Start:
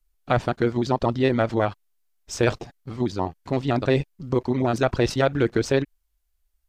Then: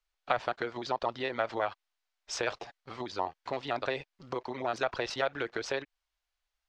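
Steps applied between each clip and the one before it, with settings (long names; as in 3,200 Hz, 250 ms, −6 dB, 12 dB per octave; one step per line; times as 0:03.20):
downward compressor, threshold −24 dBFS, peak gain reduction 9 dB
three-way crossover with the lows and the highs turned down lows −20 dB, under 510 Hz, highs −22 dB, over 5,900 Hz
level +2 dB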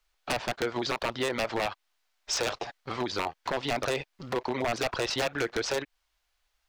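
in parallel at −1 dB: downward compressor 6 to 1, threshold −38 dBFS, peak gain reduction 15 dB
on the sum: wave folding −25 dBFS
level +4 dB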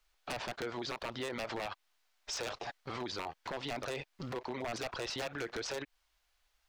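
brickwall limiter −31 dBFS, peak gain reduction 10 dB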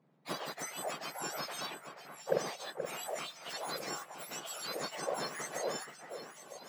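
frequency axis turned over on the octave scale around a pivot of 1,700 Hz
harmonic generator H 3 −17 dB, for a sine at −23 dBFS
delay that swaps between a low-pass and a high-pass 478 ms, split 2,300 Hz, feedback 70%, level −8 dB
level +6.5 dB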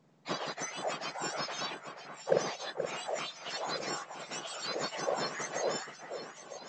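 level +3.5 dB
mu-law 128 kbit/s 16,000 Hz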